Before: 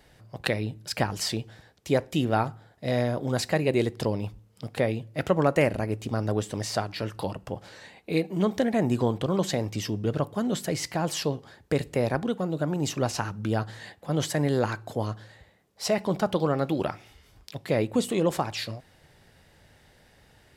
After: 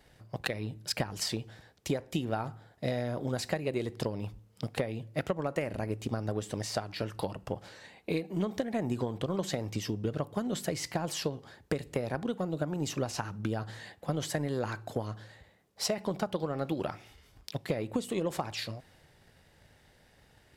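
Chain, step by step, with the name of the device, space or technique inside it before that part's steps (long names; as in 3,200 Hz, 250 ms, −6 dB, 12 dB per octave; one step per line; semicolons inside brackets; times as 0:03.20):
drum-bus smash (transient designer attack +8 dB, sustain +3 dB; downward compressor 6 to 1, threshold −22 dBFS, peak gain reduction 12.5 dB; soft clipping −11 dBFS, distortion −24 dB)
level −5 dB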